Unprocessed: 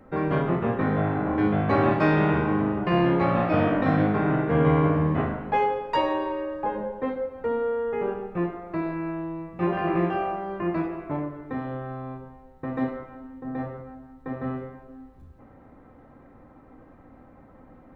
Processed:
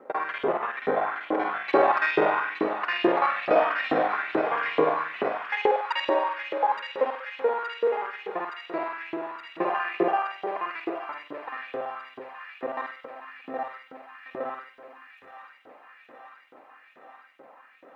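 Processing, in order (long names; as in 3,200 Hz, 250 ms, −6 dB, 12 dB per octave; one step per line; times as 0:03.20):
reversed piece by piece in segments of 48 ms
auto-filter high-pass saw up 2.3 Hz 380–3,100 Hz
delay with a high-pass on its return 870 ms, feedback 74%, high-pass 1,700 Hz, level −7 dB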